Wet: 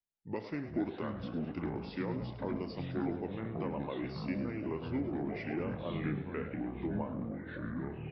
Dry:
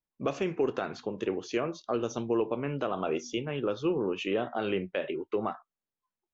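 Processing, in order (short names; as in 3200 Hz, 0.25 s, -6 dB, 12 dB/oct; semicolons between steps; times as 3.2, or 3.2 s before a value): frequency-shifting echo 82 ms, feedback 58%, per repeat +100 Hz, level -13 dB; varispeed -22%; echoes that change speed 0.321 s, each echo -5 st, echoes 3; gain -8.5 dB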